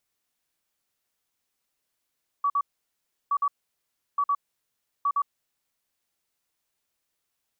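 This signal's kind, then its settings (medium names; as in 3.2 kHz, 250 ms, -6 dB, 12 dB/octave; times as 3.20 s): beep pattern sine 1.14 kHz, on 0.06 s, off 0.05 s, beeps 2, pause 0.70 s, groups 4, -20.5 dBFS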